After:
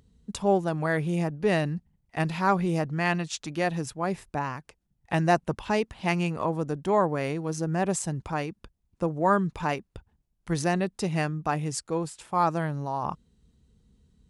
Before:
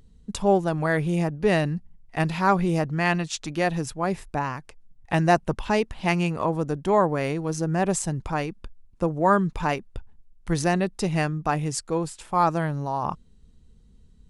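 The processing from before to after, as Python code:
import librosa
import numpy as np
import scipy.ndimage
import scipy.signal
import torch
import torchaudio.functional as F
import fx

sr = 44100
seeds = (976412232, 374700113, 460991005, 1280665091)

y = scipy.signal.sosfilt(scipy.signal.butter(2, 56.0, 'highpass', fs=sr, output='sos'), x)
y = y * 10.0 ** (-3.0 / 20.0)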